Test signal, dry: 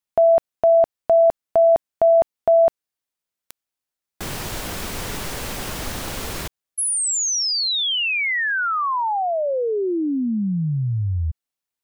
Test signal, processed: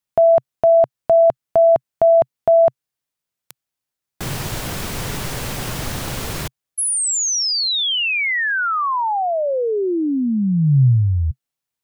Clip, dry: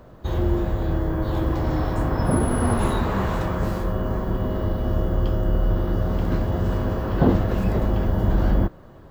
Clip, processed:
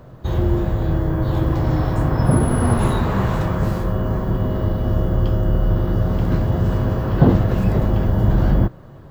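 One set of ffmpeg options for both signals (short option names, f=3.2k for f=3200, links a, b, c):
-af "equalizer=f=130:t=o:w=0.64:g=8.5,volume=2dB"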